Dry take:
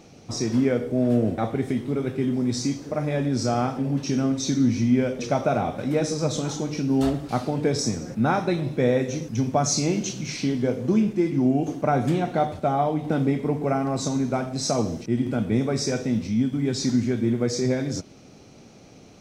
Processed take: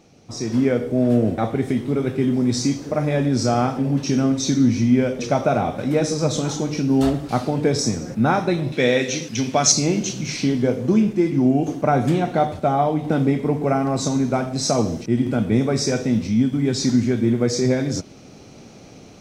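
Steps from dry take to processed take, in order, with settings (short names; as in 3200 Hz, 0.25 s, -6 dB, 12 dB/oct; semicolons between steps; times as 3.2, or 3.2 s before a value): AGC gain up to 9.5 dB; 8.72–9.72 weighting filter D; gain -4 dB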